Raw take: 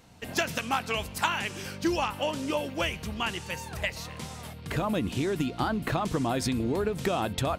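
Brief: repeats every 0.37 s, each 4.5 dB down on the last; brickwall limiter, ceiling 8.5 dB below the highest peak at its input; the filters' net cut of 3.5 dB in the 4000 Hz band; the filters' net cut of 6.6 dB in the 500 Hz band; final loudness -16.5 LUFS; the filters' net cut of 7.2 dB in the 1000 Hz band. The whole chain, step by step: bell 500 Hz -7 dB; bell 1000 Hz -7 dB; bell 4000 Hz -4.5 dB; limiter -22.5 dBFS; feedback echo 0.37 s, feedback 60%, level -4.5 dB; gain +16.5 dB

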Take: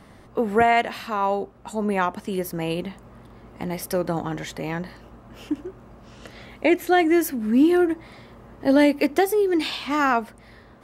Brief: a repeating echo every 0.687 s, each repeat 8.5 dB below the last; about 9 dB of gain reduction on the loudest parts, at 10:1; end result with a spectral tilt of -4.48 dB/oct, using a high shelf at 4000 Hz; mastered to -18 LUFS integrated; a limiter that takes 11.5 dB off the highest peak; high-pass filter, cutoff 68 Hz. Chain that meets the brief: HPF 68 Hz; high shelf 4000 Hz +6 dB; compressor 10:1, threshold -22 dBFS; limiter -21 dBFS; feedback echo 0.687 s, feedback 38%, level -8.5 dB; gain +13 dB

